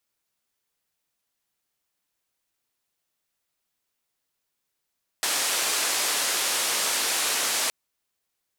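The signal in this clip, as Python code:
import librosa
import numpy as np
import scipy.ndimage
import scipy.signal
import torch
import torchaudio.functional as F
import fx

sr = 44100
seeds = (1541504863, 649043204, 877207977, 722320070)

y = fx.band_noise(sr, seeds[0], length_s=2.47, low_hz=380.0, high_hz=10000.0, level_db=-25.5)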